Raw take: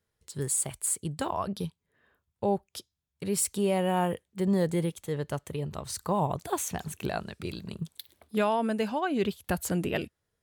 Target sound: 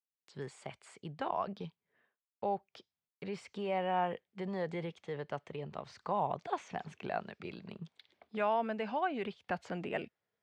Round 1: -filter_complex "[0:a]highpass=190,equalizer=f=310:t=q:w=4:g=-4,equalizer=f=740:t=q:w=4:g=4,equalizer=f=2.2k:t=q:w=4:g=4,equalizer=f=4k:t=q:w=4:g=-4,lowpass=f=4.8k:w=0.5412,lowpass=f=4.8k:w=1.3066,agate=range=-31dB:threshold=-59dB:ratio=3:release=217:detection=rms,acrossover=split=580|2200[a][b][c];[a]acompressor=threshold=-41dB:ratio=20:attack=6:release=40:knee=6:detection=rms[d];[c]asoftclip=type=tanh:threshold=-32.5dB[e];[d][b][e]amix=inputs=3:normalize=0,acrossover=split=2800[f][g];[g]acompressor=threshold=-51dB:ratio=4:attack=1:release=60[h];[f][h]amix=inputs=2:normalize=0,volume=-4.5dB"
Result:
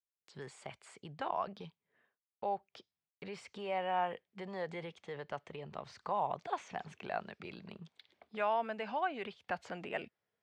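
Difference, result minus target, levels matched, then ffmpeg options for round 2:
compressor: peak gain reduction +8.5 dB
-filter_complex "[0:a]highpass=190,equalizer=f=310:t=q:w=4:g=-4,equalizer=f=740:t=q:w=4:g=4,equalizer=f=2.2k:t=q:w=4:g=4,equalizer=f=4k:t=q:w=4:g=-4,lowpass=f=4.8k:w=0.5412,lowpass=f=4.8k:w=1.3066,agate=range=-31dB:threshold=-59dB:ratio=3:release=217:detection=rms,acrossover=split=580|2200[a][b][c];[a]acompressor=threshold=-32dB:ratio=20:attack=6:release=40:knee=6:detection=rms[d];[c]asoftclip=type=tanh:threshold=-32.5dB[e];[d][b][e]amix=inputs=3:normalize=0,acrossover=split=2800[f][g];[g]acompressor=threshold=-51dB:ratio=4:attack=1:release=60[h];[f][h]amix=inputs=2:normalize=0,volume=-4.5dB"

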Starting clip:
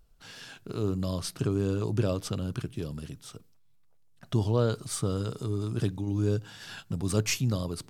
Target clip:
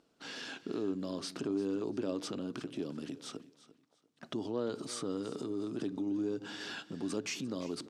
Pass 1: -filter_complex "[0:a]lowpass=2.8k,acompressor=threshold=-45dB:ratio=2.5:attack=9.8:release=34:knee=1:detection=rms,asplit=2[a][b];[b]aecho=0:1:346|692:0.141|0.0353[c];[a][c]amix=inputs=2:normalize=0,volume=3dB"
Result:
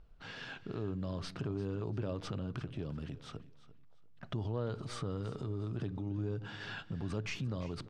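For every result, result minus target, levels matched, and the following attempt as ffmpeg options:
8000 Hz band -8.5 dB; 250 Hz band -3.0 dB
-filter_complex "[0:a]lowpass=6.4k,acompressor=threshold=-45dB:ratio=2.5:attack=9.8:release=34:knee=1:detection=rms,asplit=2[a][b];[b]aecho=0:1:346|692:0.141|0.0353[c];[a][c]amix=inputs=2:normalize=0,volume=3dB"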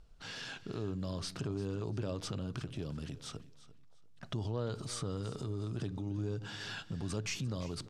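250 Hz band -3.5 dB
-filter_complex "[0:a]lowpass=6.4k,acompressor=threshold=-45dB:ratio=2.5:attack=9.8:release=34:knee=1:detection=rms,highpass=f=280:t=q:w=2.5,asplit=2[a][b];[b]aecho=0:1:346|692:0.141|0.0353[c];[a][c]amix=inputs=2:normalize=0,volume=3dB"

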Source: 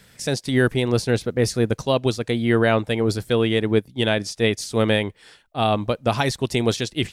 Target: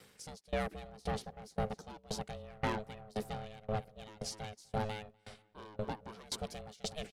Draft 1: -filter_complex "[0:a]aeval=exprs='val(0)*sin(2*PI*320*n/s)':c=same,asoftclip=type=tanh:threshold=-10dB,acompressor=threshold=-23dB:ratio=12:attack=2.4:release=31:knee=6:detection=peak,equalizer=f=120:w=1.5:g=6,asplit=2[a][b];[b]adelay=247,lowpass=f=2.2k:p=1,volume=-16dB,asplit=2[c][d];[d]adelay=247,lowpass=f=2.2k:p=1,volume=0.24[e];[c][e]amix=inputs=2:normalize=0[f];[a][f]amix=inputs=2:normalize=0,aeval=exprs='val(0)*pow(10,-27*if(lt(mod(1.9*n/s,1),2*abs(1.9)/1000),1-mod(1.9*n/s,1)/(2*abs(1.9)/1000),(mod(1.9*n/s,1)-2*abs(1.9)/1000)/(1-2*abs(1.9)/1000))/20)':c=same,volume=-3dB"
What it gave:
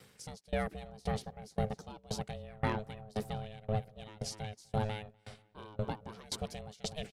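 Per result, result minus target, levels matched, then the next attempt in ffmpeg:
soft clip: distortion -12 dB; 125 Hz band +3.0 dB
-filter_complex "[0:a]aeval=exprs='val(0)*sin(2*PI*320*n/s)':c=same,asoftclip=type=tanh:threshold=-20dB,acompressor=threshold=-23dB:ratio=12:attack=2.4:release=31:knee=6:detection=peak,equalizer=f=120:w=1.5:g=6,asplit=2[a][b];[b]adelay=247,lowpass=f=2.2k:p=1,volume=-16dB,asplit=2[c][d];[d]adelay=247,lowpass=f=2.2k:p=1,volume=0.24[e];[c][e]amix=inputs=2:normalize=0[f];[a][f]amix=inputs=2:normalize=0,aeval=exprs='val(0)*pow(10,-27*if(lt(mod(1.9*n/s,1),2*abs(1.9)/1000),1-mod(1.9*n/s,1)/(2*abs(1.9)/1000),(mod(1.9*n/s,1)-2*abs(1.9)/1000)/(1-2*abs(1.9)/1000))/20)':c=same,volume=-3dB"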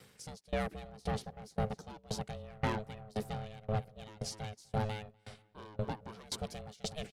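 125 Hz band +3.0 dB
-filter_complex "[0:a]aeval=exprs='val(0)*sin(2*PI*320*n/s)':c=same,asoftclip=type=tanh:threshold=-20dB,acompressor=threshold=-23dB:ratio=12:attack=2.4:release=31:knee=6:detection=peak,asplit=2[a][b];[b]adelay=247,lowpass=f=2.2k:p=1,volume=-16dB,asplit=2[c][d];[d]adelay=247,lowpass=f=2.2k:p=1,volume=0.24[e];[c][e]amix=inputs=2:normalize=0[f];[a][f]amix=inputs=2:normalize=0,aeval=exprs='val(0)*pow(10,-27*if(lt(mod(1.9*n/s,1),2*abs(1.9)/1000),1-mod(1.9*n/s,1)/(2*abs(1.9)/1000),(mod(1.9*n/s,1)-2*abs(1.9)/1000)/(1-2*abs(1.9)/1000))/20)':c=same,volume=-3dB"

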